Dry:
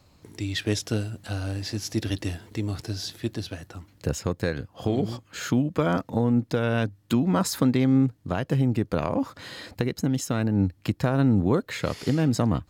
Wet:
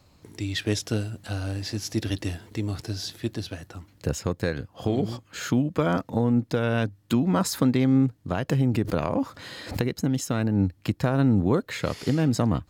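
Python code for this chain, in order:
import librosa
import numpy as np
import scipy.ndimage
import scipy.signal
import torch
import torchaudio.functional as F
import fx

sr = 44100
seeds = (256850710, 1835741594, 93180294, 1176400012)

y = fx.pre_swell(x, sr, db_per_s=120.0, at=(8.49, 9.95))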